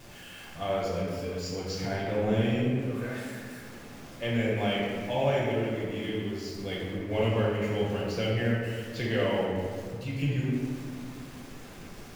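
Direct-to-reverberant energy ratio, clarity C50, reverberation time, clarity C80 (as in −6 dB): −6.5 dB, −1.0 dB, 1.9 s, 1.5 dB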